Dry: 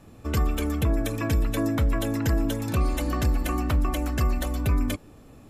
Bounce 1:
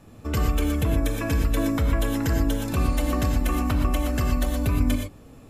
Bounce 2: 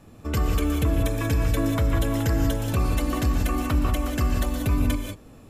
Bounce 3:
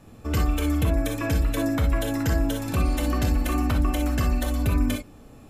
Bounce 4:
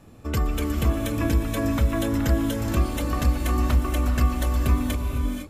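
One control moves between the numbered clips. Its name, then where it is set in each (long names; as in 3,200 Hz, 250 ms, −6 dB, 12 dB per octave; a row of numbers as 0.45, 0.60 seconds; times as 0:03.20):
reverb whose tail is shaped and stops, gate: 140, 210, 80, 530 milliseconds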